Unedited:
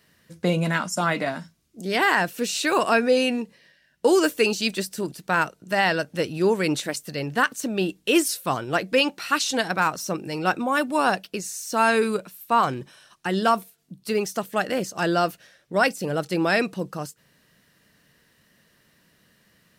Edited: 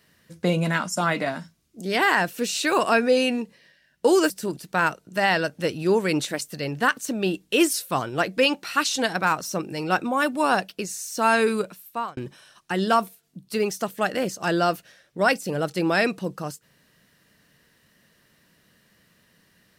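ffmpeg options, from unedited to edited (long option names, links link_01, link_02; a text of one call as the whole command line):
ffmpeg -i in.wav -filter_complex "[0:a]asplit=3[link_01][link_02][link_03];[link_01]atrim=end=4.302[link_04];[link_02]atrim=start=4.848:end=12.72,asetpts=PTS-STARTPTS,afade=type=out:start_time=7.412:duration=0.46[link_05];[link_03]atrim=start=12.72,asetpts=PTS-STARTPTS,afade=type=in:duration=0.004:curve=hsin[link_06];[link_05][link_06]concat=n=2:v=0:a=1[link_07];[link_04][link_07]acrossfade=duration=0.004:curve1=hsin:curve2=hsin" out.wav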